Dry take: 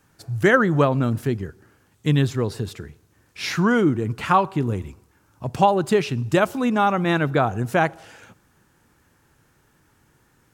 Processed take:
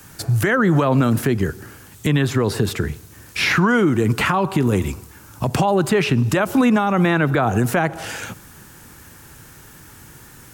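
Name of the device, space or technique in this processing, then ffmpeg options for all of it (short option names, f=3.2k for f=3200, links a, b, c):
mastering chain: -filter_complex "[0:a]equalizer=f=560:t=o:w=2.6:g=-3.5,highshelf=f=7.8k:g=9,acrossover=split=170|560|2500[a][b][c][d];[a]acompressor=threshold=-38dB:ratio=4[e];[b]acompressor=threshold=-27dB:ratio=4[f];[c]acompressor=threshold=-26dB:ratio=4[g];[d]acompressor=threshold=-47dB:ratio=4[h];[e][f][g][h]amix=inputs=4:normalize=0,acompressor=threshold=-30dB:ratio=2.5,alimiter=level_in=24.5dB:limit=-1dB:release=50:level=0:latency=1,volume=-7.5dB"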